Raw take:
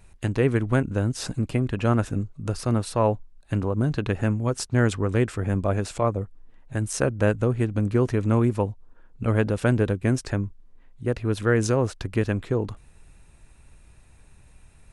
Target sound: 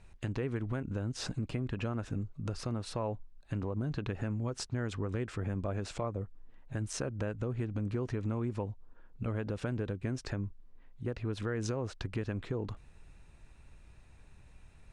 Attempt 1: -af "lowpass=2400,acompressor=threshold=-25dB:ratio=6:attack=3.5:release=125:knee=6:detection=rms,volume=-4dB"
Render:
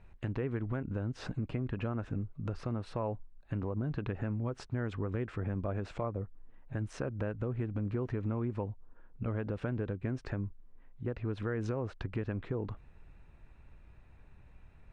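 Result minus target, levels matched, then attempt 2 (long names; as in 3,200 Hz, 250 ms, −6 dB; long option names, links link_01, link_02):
8,000 Hz band −14.5 dB
-af "lowpass=6100,acompressor=threshold=-25dB:ratio=6:attack=3.5:release=125:knee=6:detection=rms,volume=-4dB"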